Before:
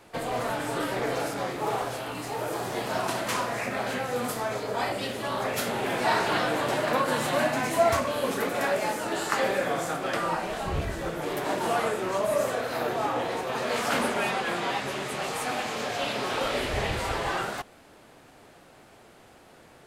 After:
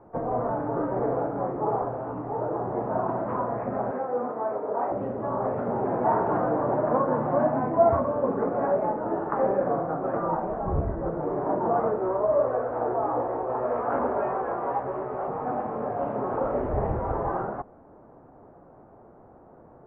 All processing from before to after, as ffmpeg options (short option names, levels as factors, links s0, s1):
-filter_complex "[0:a]asettb=1/sr,asplit=3[s0][s1][s2];[s0]atrim=end=3.914[s3];[s1]atrim=start=3.91:end=4.92,asetpts=PTS-STARTPTS,afade=t=in:d=0.004:c=qsin,afade=t=out:st=1.006:d=0.004:c=qsin,highpass=300,lowpass=8000,bandreject=f=3100:w=6.3[s4];[s2]atrim=start=4.916[s5];[s3][s4]acrossfade=d=0.004:c1=hsin:c2=qsin[s6];[s6][s5]acrossfade=d=0.004:c1=qsin:c2=hsin,asettb=1/sr,asplit=3[s7][s8][s9];[s7]atrim=end=11.984[s10];[s8]atrim=start=11.98:end=15.28,asetpts=PTS-STARTPTS,afade=t=in:d=0.004:c=qsin,afade=t=out:st=3.296:d=0.004:c=qsin,equalizer=f=180:t=o:w=0.93:g=-13,asplit=2[s11][s12];[s12]adelay=16,volume=0.562[s13];[s11][s13]amix=inputs=2:normalize=0,atrim=end_sample=145530[s14];[s9]atrim=start=15.276[s15];[s10][s14]acrossfade=d=0.004:c1=hsin:c2=qsin[s16];[s16][s15]acrossfade=d=0.004:c1=qsin:c2=hsin,lowpass=f=1100:w=0.5412,lowpass=f=1100:w=1.3066,aemphasis=mode=reproduction:type=75kf,volume=1.5"